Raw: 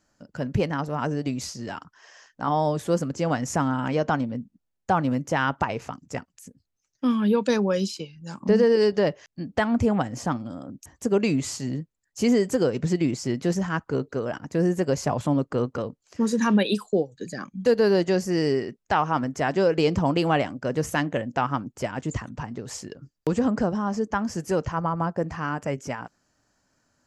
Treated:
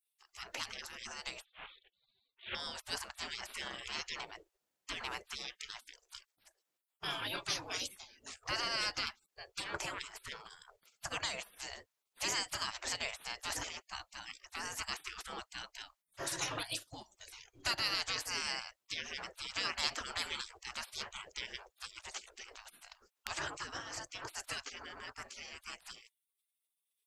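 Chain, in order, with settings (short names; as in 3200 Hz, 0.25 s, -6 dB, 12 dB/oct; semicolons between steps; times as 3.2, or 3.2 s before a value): 1.43–2.55 CVSD 16 kbps; spectral gate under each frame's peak -30 dB weak; gain +5.5 dB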